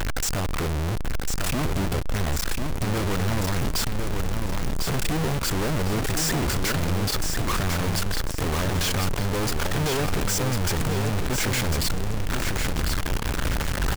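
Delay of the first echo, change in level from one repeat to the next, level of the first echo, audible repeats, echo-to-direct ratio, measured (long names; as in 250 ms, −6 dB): 1,050 ms, −10.5 dB, −5.0 dB, 2, −4.5 dB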